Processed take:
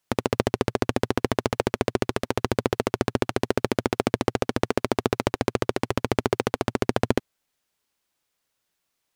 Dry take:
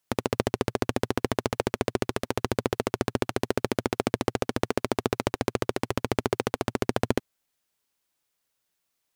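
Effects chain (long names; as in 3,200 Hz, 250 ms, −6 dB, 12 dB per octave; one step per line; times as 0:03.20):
high-shelf EQ 8,000 Hz −5 dB
level +3 dB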